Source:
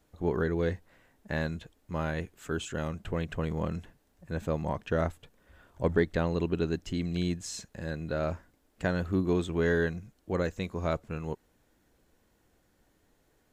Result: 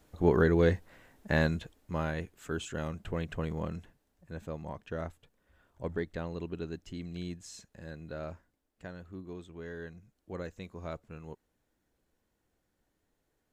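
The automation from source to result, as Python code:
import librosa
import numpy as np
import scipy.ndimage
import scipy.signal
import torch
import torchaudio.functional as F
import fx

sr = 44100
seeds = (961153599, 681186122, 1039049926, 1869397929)

y = fx.gain(x, sr, db=fx.line((1.45, 4.5), (2.19, -2.5), (3.41, -2.5), (4.51, -9.0), (8.21, -9.0), (9.02, -16.5), (9.73, -16.5), (10.17, -10.0)))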